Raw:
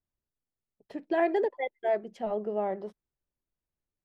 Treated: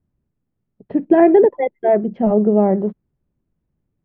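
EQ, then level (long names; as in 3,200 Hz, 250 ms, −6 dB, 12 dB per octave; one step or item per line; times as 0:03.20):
Bessel low-pass filter 1,900 Hz, order 4
parametric band 170 Hz +11.5 dB 2.4 octaves
low-shelf EQ 380 Hz +7 dB
+8.0 dB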